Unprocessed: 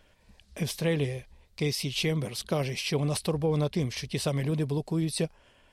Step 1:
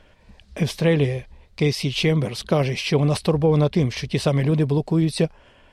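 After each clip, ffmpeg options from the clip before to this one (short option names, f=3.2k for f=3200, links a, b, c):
-af "aemphasis=mode=reproduction:type=50kf,volume=9dB"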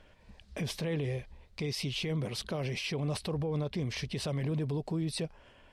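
-af "alimiter=limit=-20dB:level=0:latency=1:release=71,volume=-6dB"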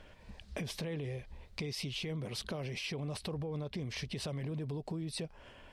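-af "acompressor=threshold=-40dB:ratio=6,volume=3.5dB"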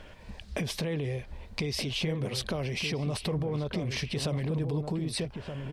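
-filter_complex "[0:a]asplit=2[a][b];[b]adelay=1224,volume=-6dB,highshelf=f=4k:g=-27.6[c];[a][c]amix=inputs=2:normalize=0,volume=7dB"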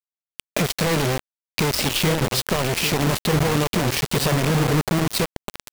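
-af "acrusher=bits=4:mix=0:aa=0.000001,volume=9dB"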